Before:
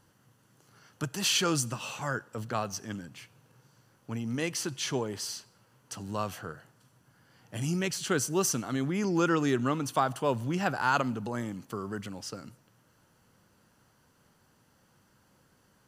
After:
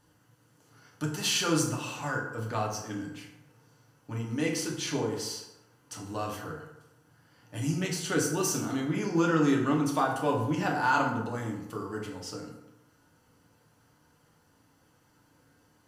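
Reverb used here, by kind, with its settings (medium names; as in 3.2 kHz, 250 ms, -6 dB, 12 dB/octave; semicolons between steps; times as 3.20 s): FDN reverb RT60 0.93 s, low-frequency decay 0.9×, high-frequency decay 0.55×, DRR -2 dB; trim -3.5 dB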